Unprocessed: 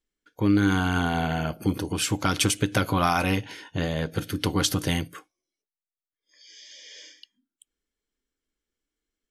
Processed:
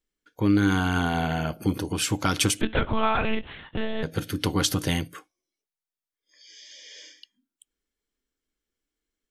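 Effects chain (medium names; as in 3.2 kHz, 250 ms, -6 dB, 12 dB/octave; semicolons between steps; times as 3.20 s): 2.61–4.03 s: monotone LPC vocoder at 8 kHz 220 Hz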